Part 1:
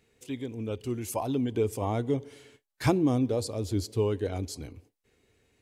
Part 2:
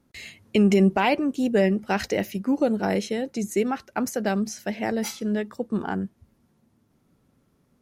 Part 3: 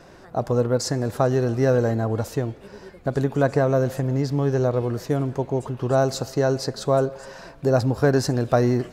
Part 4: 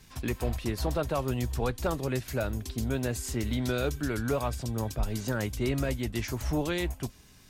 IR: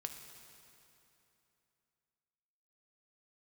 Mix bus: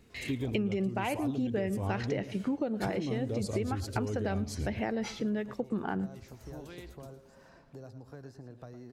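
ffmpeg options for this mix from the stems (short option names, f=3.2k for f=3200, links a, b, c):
-filter_complex "[0:a]lowshelf=f=170:g=12,alimiter=limit=-22dB:level=0:latency=1,volume=1dB,asplit=2[a][b];[b]volume=-14dB[c];[1:a]lowpass=4k,volume=0dB,asplit=3[d][e][f];[e]volume=-21dB[g];[2:a]acrossover=split=240|2300[h][i][j];[h]acompressor=threshold=-33dB:ratio=4[k];[i]acompressor=threshold=-34dB:ratio=4[l];[j]acompressor=threshold=-53dB:ratio=4[m];[k][l][m]amix=inputs=3:normalize=0,adelay=100,volume=-17dB,asplit=2[n][o];[o]volume=-11.5dB[p];[3:a]volume=-17.5dB,asplit=2[q][r];[r]volume=-14.5dB[s];[f]apad=whole_len=330368[t];[q][t]sidechaincompress=threshold=-33dB:ratio=8:attack=5.1:release=555[u];[c][g][p][s]amix=inputs=4:normalize=0,aecho=0:1:110:1[v];[a][d][n][u][v]amix=inputs=5:normalize=0,acompressor=threshold=-29dB:ratio=6"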